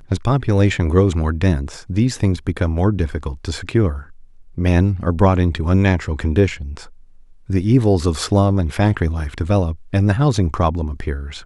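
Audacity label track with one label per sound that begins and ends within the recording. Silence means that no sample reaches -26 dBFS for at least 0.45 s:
4.580000	6.820000	sound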